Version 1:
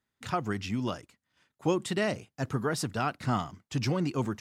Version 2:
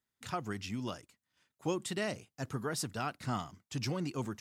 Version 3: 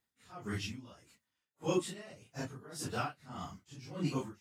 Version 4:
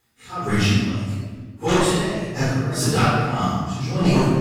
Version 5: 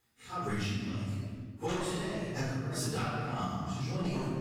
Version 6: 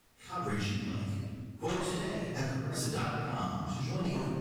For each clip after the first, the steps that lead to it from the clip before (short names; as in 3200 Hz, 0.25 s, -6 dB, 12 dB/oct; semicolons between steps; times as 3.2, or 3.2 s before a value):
high shelf 4400 Hz +7.5 dB; gain -7 dB
phase scrambler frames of 0.1 s; dB-linear tremolo 1.7 Hz, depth 20 dB; gain +4 dB
sine folder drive 10 dB, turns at -20 dBFS; shoebox room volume 1400 m³, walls mixed, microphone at 4 m
compressor 5:1, threshold -24 dBFS, peak gain reduction 11 dB; gain -7.5 dB
added noise pink -67 dBFS